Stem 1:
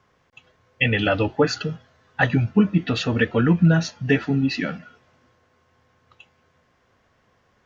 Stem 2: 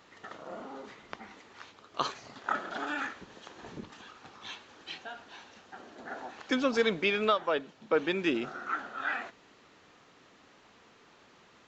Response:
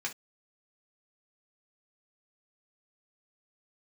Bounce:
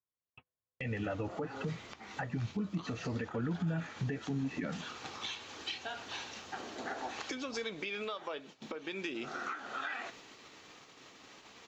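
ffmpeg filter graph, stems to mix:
-filter_complex "[0:a]lowpass=f=2.2k:w=0.5412,lowpass=f=2.2k:w=1.3066,acompressor=threshold=-30dB:ratio=2,volume=1dB,asplit=2[a][b];[1:a]alimiter=level_in=0.5dB:limit=-24dB:level=0:latency=1:release=238,volume=-0.5dB,highshelf=f=2.7k:g=8.5,acompressor=threshold=-39dB:ratio=10,adelay=800,volume=3dB,asplit=2[c][d];[d]volume=-9.5dB[e];[b]apad=whole_len=550298[f];[c][f]sidechaincompress=threshold=-29dB:ratio=8:attack=16:release=182[g];[2:a]atrim=start_sample=2205[h];[e][h]afir=irnorm=-1:irlink=0[i];[a][g][i]amix=inputs=3:normalize=0,agate=range=-41dB:threshold=-51dB:ratio=16:detection=peak,equalizer=f=1.6k:w=2.8:g=-4,alimiter=level_in=3dB:limit=-24dB:level=0:latency=1:release=351,volume=-3dB"

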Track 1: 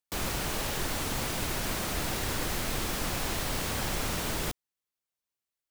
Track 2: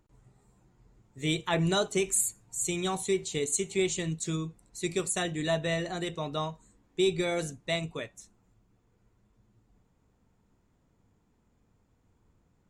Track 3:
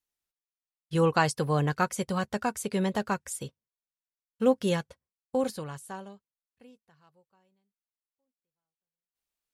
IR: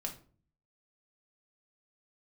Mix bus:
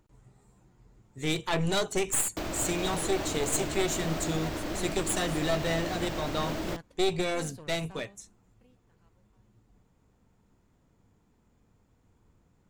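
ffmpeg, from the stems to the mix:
-filter_complex "[0:a]highshelf=f=7.3k:g=-10.5,alimiter=level_in=4dB:limit=-24dB:level=0:latency=1:release=165,volume=-4dB,equalizer=f=315:t=o:w=0.33:g=12,equalizer=f=630:t=o:w=0.33:g=9,equalizer=f=10k:t=o:w=0.33:g=-10,adelay=2250,volume=1dB[a];[1:a]aeval=exprs='clip(val(0),-1,0.0178)':c=same,volume=2.5dB[b];[2:a]aeval=exprs='(tanh(39.8*val(0)+0.65)-tanh(0.65))/39.8':c=same,adelay=2000,volume=-7.5dB[c];[a][b][c]amix=inputs=3:normalize=0"

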